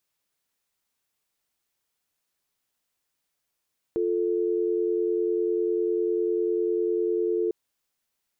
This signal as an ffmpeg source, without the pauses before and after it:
ffmpeg -f lavfi -i "aevalsrc='0.0562*(sin(2*PI*350*t)+sin(2*PI*440*t))':duration=3.55:sample_rate=44100" out.wav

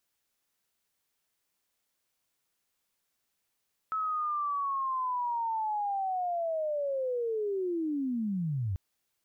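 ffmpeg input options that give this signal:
ffmpeg -f lavfi -i "aevalsrc='0.0376*sin(2*PI*(1300*t-1213*t*t/(2*4.84)))':duration=4.84:sample_rate=44100" out.wav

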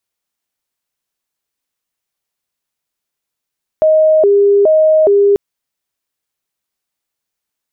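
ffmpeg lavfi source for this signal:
ffmpeg -f lavfi -i "aevalsrc='0.501*sin(2*PI*(514.5*t+111.5/1.2*(0.5-abs(mod(1.2*t,1)-0.5))))':duration=1.54:sample_rate=44100" out.wav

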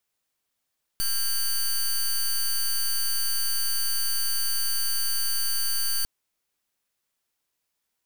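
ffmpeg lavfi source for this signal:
ffmpeg -f lavfi -i "aevalsrc='0.0596*(2*lt(mod(4570*t,1),0.14)-1)':duration=5.05:sample_rate=44100" out.wav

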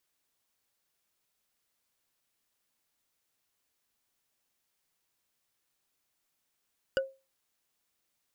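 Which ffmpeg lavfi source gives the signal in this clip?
ffmpeg -f lavfi -i "aevalsrc='0.0794*pow(10,-3*t/0.28)*sin(2*PI*536*t)+0.0501*pow(10,-3*t/0.083)*sin(2*PI*1477.8*t)+0.0316*pow(10,-3*t/0.037)*sin(2*PI*2896.5*t)+0.02*pow(10,-3*t/0.02)*sin(2*PI*4788.1*t)+0.0126*pow(10,-3*t/0.013)*sin(2*PI*7150.2*t)':duration=0.45:sample_rate=44100" out.wav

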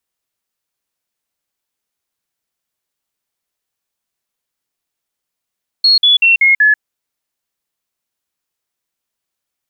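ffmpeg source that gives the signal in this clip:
ffmpeg -f lavfi -i "aevalsrc='0.501*clip(min(mod(t,0.19),0.14-mod(t,0.19))/0.005,0,1)*sin(2*PI*4310*pow(2,-floor(t/0.19)/3)*mod(t,0.19))':duration=0.95:sample_rate=44100" out.wav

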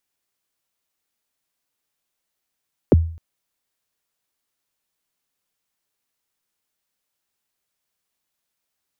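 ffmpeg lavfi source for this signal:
ffmpeg -f lavfi -i "aevalsrc='0.501*pow(10,-3*t/0.48)*sin(2*PI*(570*0.024/log(82/570)*(exp(log(82/570)*min(t,0.024)/0.024)-1)+82*max(t-0.024,0)))':duration=0.26:sample_rate=44100" out.wav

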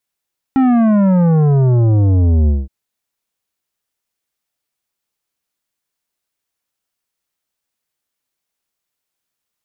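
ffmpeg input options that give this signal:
ffmpeg -f lavfi -i "aevalsrc='0.316*clip((2.12-t)/0.2,0,1)*tanh(3.55*sin(2*PI*270*2.12/log(65/270)*(exp(log(65/270)*t/2.12)-1)))/tanh(3.55)':duration=2.12:sample_rate=44100" out.wav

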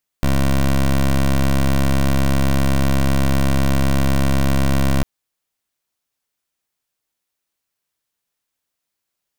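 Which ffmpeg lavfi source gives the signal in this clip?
ffmpeg -f lavfi -i "aevalsrc='0.178*(2*lt(mod(67.9*t,1),0.16)-1)':duration=4.8:sample_rate=44100" out.wav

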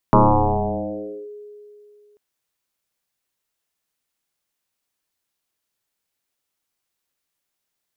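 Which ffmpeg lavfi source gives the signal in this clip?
ffmpeg -f lavfi -i "aevalsrc='0.398*pow(10,-3*t/2.74)*sin(2*PI*416*t+6.5*clip(1-t/1.16,0,1)*sin(2*PI*0.26*416*t))':duration=2.04:sample_rate=44100" out.wav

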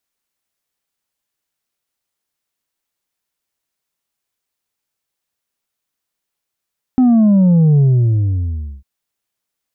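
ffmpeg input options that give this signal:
ffmpeg -f lavfi -i "aevalsrc='0.398*clip((1.85-t)/1.04,0,1)*tanh(1.5*sin(2*PI*260*1.85/log(65/260)*(exp(log(65/260)*t/1.85)-1)))/tanh(1.5)':duration=1.85:sample_rate=44100" out.wav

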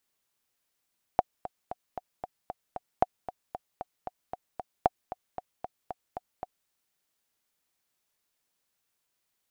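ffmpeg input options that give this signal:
ffmpeg -f lavfi -i "aevalsrc='pow(10,(-7.5-14.5*gte(mod(t,7*60/229),60/229))/20)*sin(2*PI*734*mod(t,60/229))*exp(-6.91*mod(t,60/229)/0.03)':duration=5.5:sample_rate=44100" out.wav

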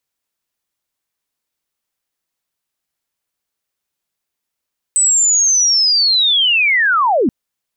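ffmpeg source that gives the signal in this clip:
ffmpeg -f lavfi -i "aevalsrc='pow(10,(-9.5-1*t/2.33)/20)*sin(2*PI*(8100*t-7900*t*t/(2*2.33)))':duration=2.33:sample_rate=44100" out.wav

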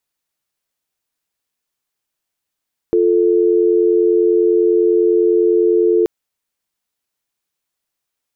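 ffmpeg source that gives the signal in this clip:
ffmpeg -f lavfi -i "aevalsrc='0.224*(sin(2*PI*350*t)+sin(2*PI*440*t))':duration=3.13:sample_rate=44100" out.wav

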